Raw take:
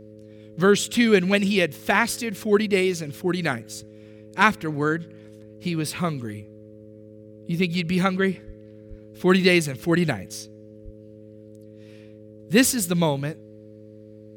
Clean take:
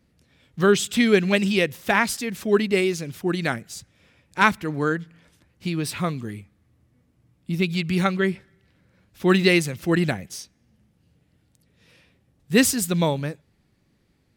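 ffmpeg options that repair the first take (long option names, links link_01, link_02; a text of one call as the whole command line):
ffmpeg -i in.wav -filter_complex "[0:a]bandreject=frequency=106.9:width_type=h:width=4,bandreject=frequency=213.8:width_type=h:width=4,bandreject=frequency=320.7:width_type=h:width=4,bandreject=frequency=427.6:width_type=h:width=4,bandreject=frequency=534.5:width_type=h:width=4,asplit=3[link_01][link_02][link_03];[link_01]afade=type=out:start_time=8.46:duration=0.02[link_04];[link_02]highpass=frequency=140:width=0.5412,highpass=frequency=140:width=1.3066,afade=type=in:start_time=8.46:duration=0.02,afade=type=out:start_time=8.58:duration=0.02[link_05];[link_03]afade=type=in:start_time=8.58:duration=0.02[link_06];[link_04][link_05][link_06]amix=inputs=3:normalize=0,asplit=3[link_07][link_08][link_09];[link_07]afade=type=out:start_time=8.89:duration=0.02[link_10];[link_08]highpass=frequency=140:width=0.5412,highpass=frequency=140:width=1.3066,afade=type=in:start_time=8.89:duration=0.02,afade=type=out:start_time=9.01:duration=0.02[link_11];[link_09]afade=type=in:start_time=9.01:duration=0.02[link_12];[link_10][link_11][link_12]amix=inputs=3:normalize=0,asplit=3[link_13][link_14][link_15];[link_13]afade=type=out:start_time=10.84:duration=0.02[link_16];[link_14]highpass=frequency=140:width=0.5412,highpass=frequency=140:width=1.3066,afade=type=in:start_time=10.84:duration=0.02,afade=type=out:start_time=10.96:duration=0.02[link_17];[link_15]afade=type=in:start_time=10.96:duration=0.02[link_18];[link_16][link_17][link_18]amix=inputs=3:normalize=0" out.wav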